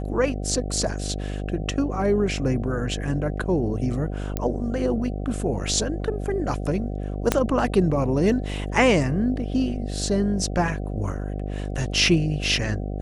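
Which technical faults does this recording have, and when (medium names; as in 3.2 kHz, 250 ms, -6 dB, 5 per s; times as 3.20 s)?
buzz 50 Hz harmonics 15 -29 dBFS
4.37 s: pop -12 dBFS
7.32 s: pop -4 dBFS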